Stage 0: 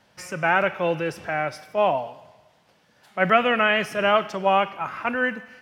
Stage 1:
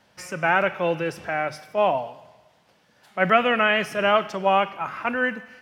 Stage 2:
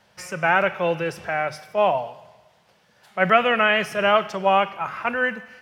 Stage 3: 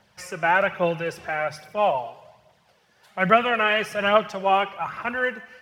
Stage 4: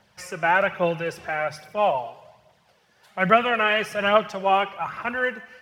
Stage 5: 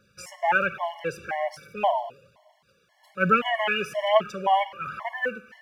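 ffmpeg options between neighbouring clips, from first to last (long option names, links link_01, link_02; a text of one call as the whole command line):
ffmpeg -i in.wav -af "bandreject=frequency=50:width_type=h:width=6,bandreject=frequency=100:width_type=h:width=6,bandreject=frequency=150:width_type=h:width=6" out.wav
ffmpeg -i in.wav -af "equalizer=frequency=280:width=4.6:gain=-10.5,volume=1.5dB" out.wav
ffmpeg -i in.wav -af "aphaser=in_gain=1:out_gain=1:delay=3:decay=0.43:speed=1.2:type=triangular,volume=-2.5dB" out.wav
ffmpeg -i in.wav -af anull out.wav
ffmpeg -i in.wav -af "afftfilt=real='re*gt(sin(2*PI*1.9*pts/sr)*(1-2*mod(floor(b*sr/1024/570),2)),0)':imag='im*gt(sin(2*PI*1.9*pts/sr)*(1-2*mod(floor(b*sr/1024/570),2)),0)':win_size=1024:overlap=0.75" out.wav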